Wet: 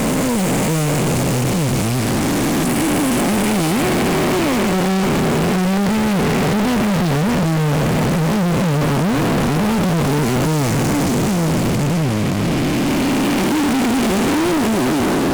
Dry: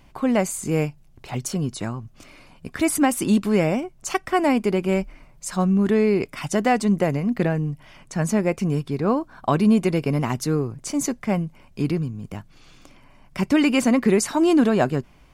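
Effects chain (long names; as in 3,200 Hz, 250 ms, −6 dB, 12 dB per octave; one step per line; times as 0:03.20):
spectrum smeared in time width 1,410 ms
fuzz pedal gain 47 dB, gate −46 dBFS
0:01.87–0:02.67: highs frequency-modulated by the lows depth 0.32 ms
level −2 dB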